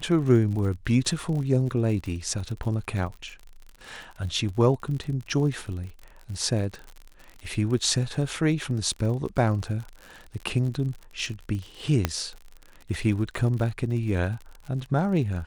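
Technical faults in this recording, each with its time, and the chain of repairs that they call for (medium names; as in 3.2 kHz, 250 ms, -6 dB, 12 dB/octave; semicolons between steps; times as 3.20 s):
crackle 58 per s -34 dBFS
12.05 s: pop -8 dBFS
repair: de-click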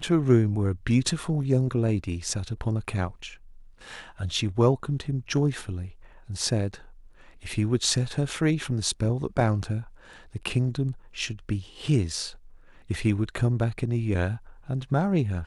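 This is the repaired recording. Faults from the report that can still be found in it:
nothing left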